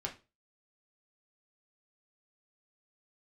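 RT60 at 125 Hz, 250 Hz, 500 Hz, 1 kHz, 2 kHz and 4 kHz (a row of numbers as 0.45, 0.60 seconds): 0.35, 0.30, 0.35, 0.25, 0.25, 0.25 seconds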